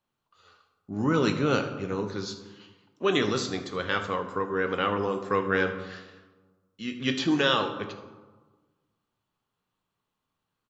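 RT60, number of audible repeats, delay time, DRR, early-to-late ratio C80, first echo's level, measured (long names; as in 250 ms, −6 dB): 1.4 s, 1, 77 ms, 6.0 dB, 11.5 dB, −17.0 dB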